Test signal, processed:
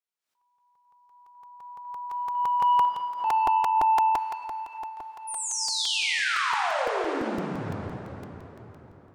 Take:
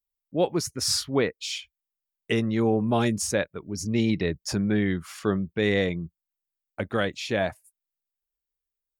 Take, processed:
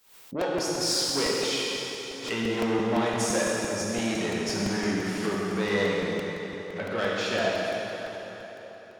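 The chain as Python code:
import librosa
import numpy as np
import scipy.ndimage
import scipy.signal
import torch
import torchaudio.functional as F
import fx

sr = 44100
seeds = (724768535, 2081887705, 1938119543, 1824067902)

y = fx.high_shelf(x, sr, hz=7800.0, db=-9.0)
y = 10.0 ** (-22.5 / 20.0) * np.tanh(y / 10.0 ** (-22.5 / 20.0))
y = fx.highpass(y, sr, hz=140.0, slope=6)
y = fx.low_shelf(y, sr, hz=330.0, db=-8.5)
y = fx.rev_plate(y, sr, seeds[0], rt60_s=4.1, hf_ratio=0.8, predelay_ms=0, drr_db=-5.5)
y = fx.buffer_crackle(y, sr, first_s=0.41, period_s=0.17, block=128, kind='repeat')
y = fx.pre_swell(y, sr, db_per_s=96.0)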